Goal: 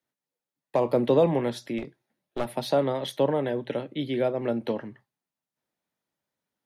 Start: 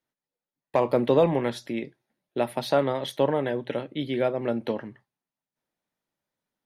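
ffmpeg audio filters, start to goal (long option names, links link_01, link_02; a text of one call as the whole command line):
ffmpeg -i in.wav -filter_complex "[0:a]highpass=51,acrossover=split=190|920|3300[link_01][link_02][link_03][link_04];[link_03]alimiter=level_in=7dB:limit=-24dB:level=0:latency=1:release=170,volume=-7dB[link_05];[link_01][link_02][link_05][link_04]amix=inputs=4:normalize=0,asettb=1/sr,asplit=3[link_06][link_07][link_08];[link_06]atrim=end=1.784[link_09];[link_07]atrim=start=1.78:end=2.57,asetpts=PTS-STARTPTS,afade=type=in:duration=0.004:curve=qsin,afade=type=out:start_time=0.786:duration=0.004:curve=qsin,aeval=exprs='clip(val(0),-1,0.0211)':channel_layout=same[link_10];[link_08]atrim=start=2.566[link_11];[link_09][link_10]acrossfade=duration=0.004:curve1=hsin:curve2=qsin[link_12];[link_12][link_11]acrossfade=duration=0.004:curve1=qsin:curve2=hsin" out.wav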